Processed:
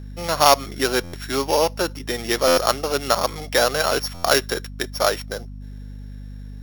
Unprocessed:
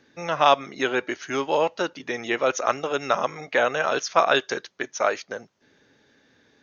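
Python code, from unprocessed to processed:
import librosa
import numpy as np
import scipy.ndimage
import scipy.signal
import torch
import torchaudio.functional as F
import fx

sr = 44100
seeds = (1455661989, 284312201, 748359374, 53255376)

y = np.r_[np.sort(x[:len(x) // 8 * 8].reshape(-1, 8), axis=1).ravel(), x[len(x) // 8 * 8:]]
y = fx.add_hum(y, sr, base_hz=50, snr_db=13)
y = fx.buffer_glitch(y, sr, at_s=(1.03, 2.47, 4.14), block=512, repeats=8)
y = y * librosa.db_to_amplitude(3.0)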